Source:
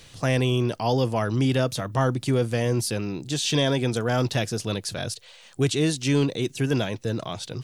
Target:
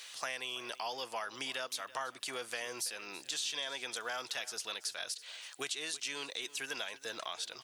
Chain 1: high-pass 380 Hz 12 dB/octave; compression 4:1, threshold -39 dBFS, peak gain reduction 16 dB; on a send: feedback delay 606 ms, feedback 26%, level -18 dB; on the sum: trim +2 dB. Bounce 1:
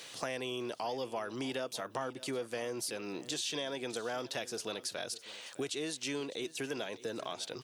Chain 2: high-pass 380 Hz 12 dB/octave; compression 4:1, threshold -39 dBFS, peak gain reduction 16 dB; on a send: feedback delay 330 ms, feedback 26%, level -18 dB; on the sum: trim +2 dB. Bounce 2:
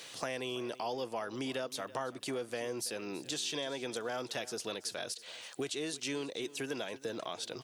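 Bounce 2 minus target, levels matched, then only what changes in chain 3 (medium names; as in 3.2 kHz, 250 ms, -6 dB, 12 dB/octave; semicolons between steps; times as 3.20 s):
500 Hz band +7.0 dB
change: high-pass 1.1 kHz 12 dB/octave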